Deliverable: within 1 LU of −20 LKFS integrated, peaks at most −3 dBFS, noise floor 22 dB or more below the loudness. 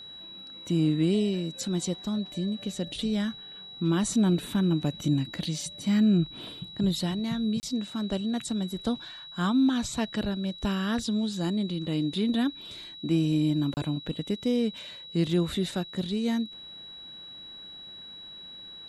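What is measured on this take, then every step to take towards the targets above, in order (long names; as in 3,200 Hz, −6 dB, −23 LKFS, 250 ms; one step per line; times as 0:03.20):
number of dropouts 2; longest dropout 29 ms; interfering tone 3,900 Hz; level of the tone −42 dBFS; integrated loudness −28.5 LKFS; sample peak −15.5 dBFS; target loudness −20.0 LKFS
→ repair the gap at 0:07.60/0:13.74, 29 ms
notch filter 3,900 Hz, Q 30
level +8.5 dB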